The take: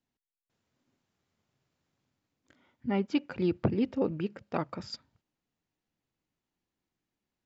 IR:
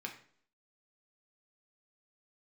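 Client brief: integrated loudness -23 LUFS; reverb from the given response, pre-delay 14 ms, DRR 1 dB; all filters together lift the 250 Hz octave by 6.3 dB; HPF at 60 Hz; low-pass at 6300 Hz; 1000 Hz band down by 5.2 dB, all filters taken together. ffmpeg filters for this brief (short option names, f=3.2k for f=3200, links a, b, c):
-filter_complex "[0:a]highpass=60,lowpass=6.3k,equalizer=f=250:t=o:g=8.5,equalizer=f=1k:t=o:g=-8,asplit=2[a][b];[1:a]atrim=start_sample=2205,adelay=14[c];[b][c]afir=irnorm=-1:irlink=0,volume=-1dB[d];[a][d]amix=inputs=2:normalize=0,volume=1.5dB"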